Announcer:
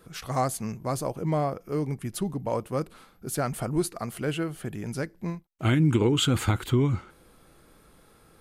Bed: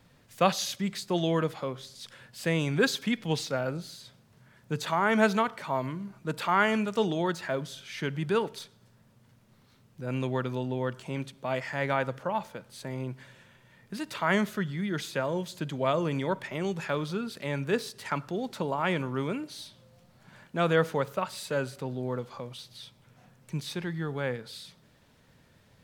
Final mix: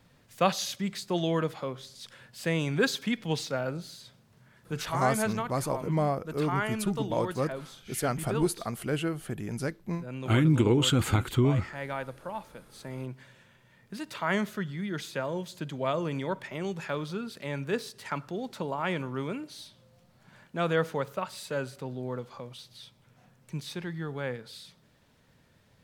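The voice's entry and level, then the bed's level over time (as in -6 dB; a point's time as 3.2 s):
4.65 s, -1.0 dB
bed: 4.6 s -1 dB
5.16 s -7 dB
12.43 s -7 dB
13 s -2.5 dB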